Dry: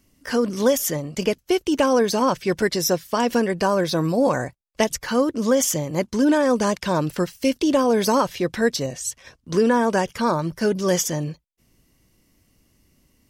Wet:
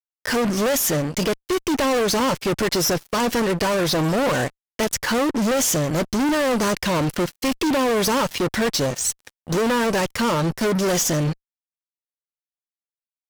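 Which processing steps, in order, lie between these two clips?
fuzz box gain 30 dB, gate -38 dBFS; trim -5 dB

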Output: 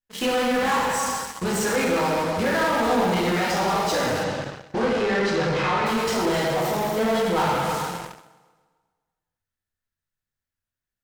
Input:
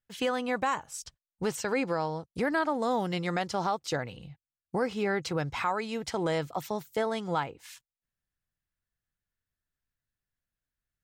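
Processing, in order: flange 1.1 Hz, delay 4.6 ms, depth 7.9 ms, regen +37%; plate-style reverb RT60 1.7 s, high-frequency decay 0.85×, DRR -7.5 dB; in parallel at -8.5 dB: fuzz box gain 39 dB, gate -43 dBFS; 4.23–5.85 s: on the sum: low-pass 7.4 kHz -> 4.2 kHz 12 dB/octave; thinning echo 132 ms, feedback 50%, high-pass 180 Hz, level -20 dB; trim -3.5 dB

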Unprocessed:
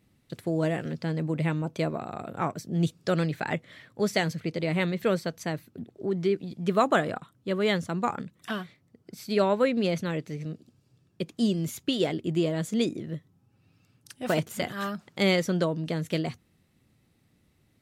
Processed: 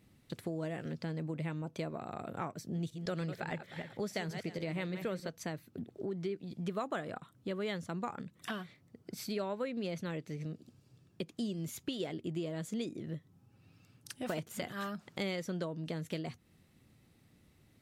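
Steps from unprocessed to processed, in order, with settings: 2.60–5.29 s: backward echo that repeats 153 ms, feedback 40%, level -11 dB; compression 3:1, threshold -40 dBFS, peak gain reduction 16.5 dB; trim +1 dB

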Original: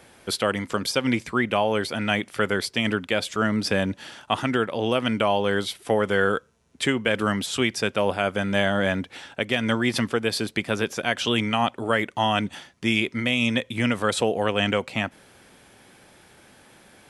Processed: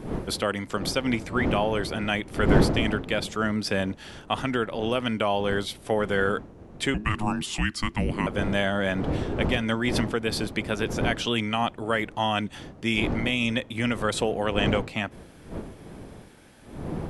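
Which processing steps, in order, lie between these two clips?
wind noise 340 Hz -29 dBFS; 6.94–8.27 s: frequency shift -430 Hz; trim -3 dB

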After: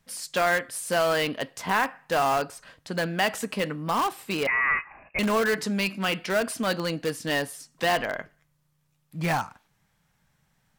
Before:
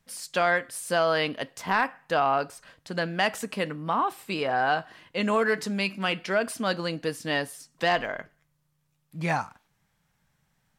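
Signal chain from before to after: in parallel at -10 dB: integer overflow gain 21.5 dB; 4.47–5.19 s: on the sum: frequency inversion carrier 2.7 kHz

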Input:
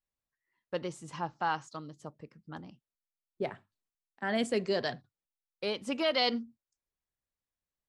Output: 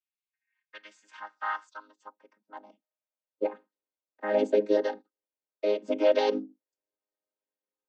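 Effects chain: vocoder on a held chord major triad, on G#3; high-pass sweep 2.5 kHz -> 450 Hz, 0.18–3.67 s; trim +3.5 dB

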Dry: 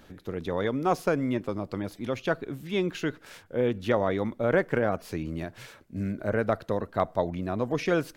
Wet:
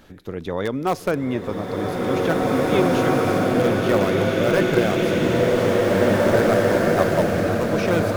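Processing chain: in parallel at -12 dB: integer overflow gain 15.5 dB; on the sum: swelling reverb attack 2290 ms, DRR -6.5 dB; trim +1.5 dB

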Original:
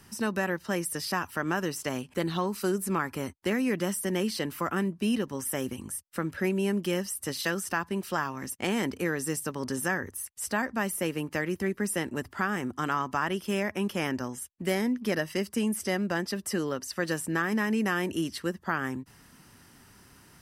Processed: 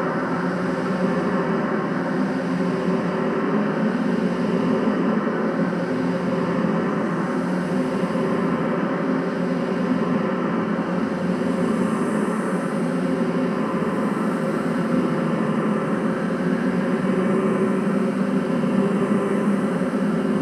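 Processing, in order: low-pass that closes with the level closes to 1.5 kHz, closed at -26.5 dBFS; echo with a slow build-up 184 ms, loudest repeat 8, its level -3.5 dB; Paulstretch 9.6×, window 0.25 s, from 4.66 s

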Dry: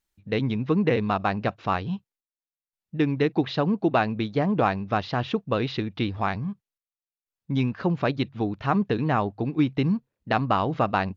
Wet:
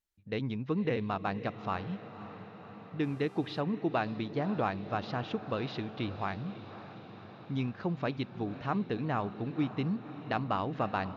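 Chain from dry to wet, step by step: echo that smears into a reverb 546 ms, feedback 69%, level -13.5 dB; 3.02–3.60 s: mains buzz 400 Hz, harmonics 30, -47 dBFS -7 dB/octave; trim -9 dB

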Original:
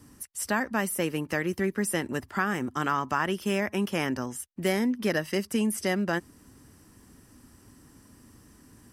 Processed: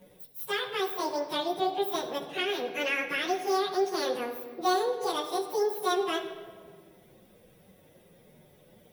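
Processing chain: frequency-domain pitch shifter +11.5 st; simulated room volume 2400 m³, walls mixed, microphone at 1 m

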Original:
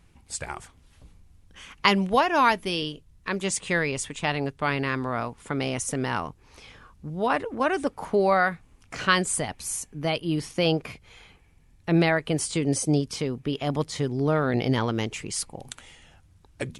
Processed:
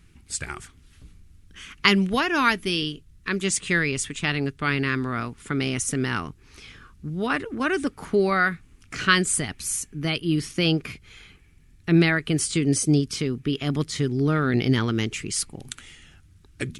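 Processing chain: high-order bell 710 Hz -11 dB 1.3 oct; trim +3.5 dB

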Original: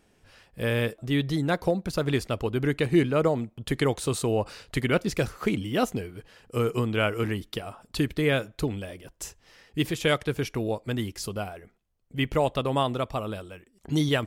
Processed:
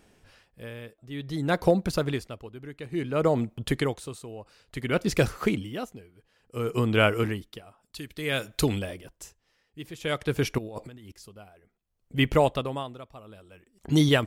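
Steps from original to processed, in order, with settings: 7.83–8.79 s: treble shelf 2.1 kHz +10.5 dB; 10.58–11.12 s: compressor with a negative ratio -39 dBFS, ratio -1; logarithmic tremolo 0.57 Hz, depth 20 dB; trim +4 dB

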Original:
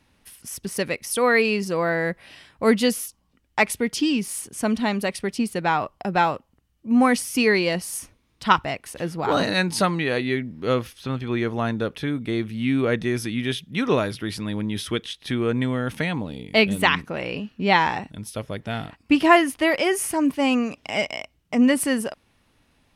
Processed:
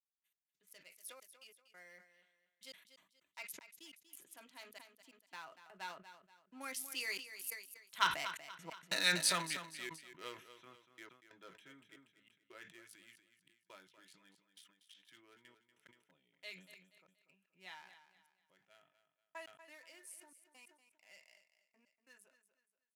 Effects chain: local Wiener filter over 9 samples; Doppler pass-by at 8.74 s, 20 m/s, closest 10 m; differentiator; on a send at -5 dB: reverberation RT60 0.10 s, pre-delay 3 ms; on the sum: trance gate "..x..xxxxxx" 138 bpm -60 dB; high-pass 150 Hz 12 dB/octave; treble shelf 9.5 kHz -4.5 dB; feedback delay 239 ms, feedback 34%, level -12 dB; decay stretcher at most 110 dB/s; trim +3.5 dB

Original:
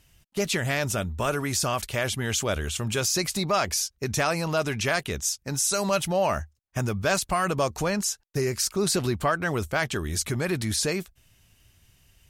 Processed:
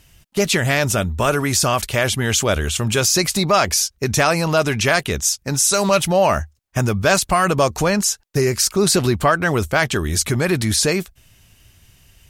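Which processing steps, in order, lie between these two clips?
5.54–6.00 s: loudspeaker Doppler distortion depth 0.1 ms; trim +8.5 dB

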